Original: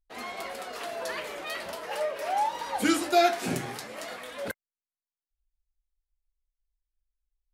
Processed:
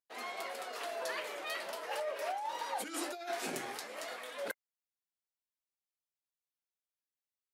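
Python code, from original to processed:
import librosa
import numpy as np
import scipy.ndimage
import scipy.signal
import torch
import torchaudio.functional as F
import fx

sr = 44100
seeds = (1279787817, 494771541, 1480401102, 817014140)

y = fx.over_compress(x, sr, threshold_db=-30.0, ratio=-1.0)
y = scipy.signal.sosfilt(scipy.signal.butter(2, 350.0, 'highpass', fs=sr, output='sos'), y)
y = F.gain(torch.from_numpy(y), -6.5).numpy()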